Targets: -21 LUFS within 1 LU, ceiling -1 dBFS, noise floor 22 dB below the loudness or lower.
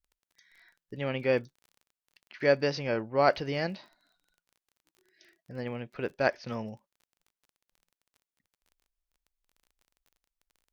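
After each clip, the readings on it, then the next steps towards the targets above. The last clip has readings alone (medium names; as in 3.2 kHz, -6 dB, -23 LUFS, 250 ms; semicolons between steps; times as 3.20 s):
tick rate 25 per s; loudness -30.0 LUFS; peak level -9.0 dBFS; loudness target -21.0 LUFS
-> de-click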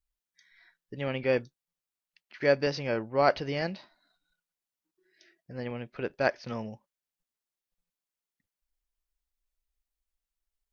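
tick rate 0 per s; loudness -30.0 LUFS; peak level -9.0 dBFS; loudness target -21.0 LUFS
-> trim +9 dB; peak limiter -1 dBFS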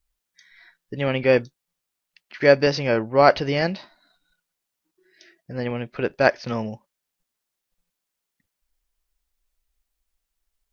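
loudness -21.0 LUFS; peak level -1.0 dBFS; noise floor -83 dBFS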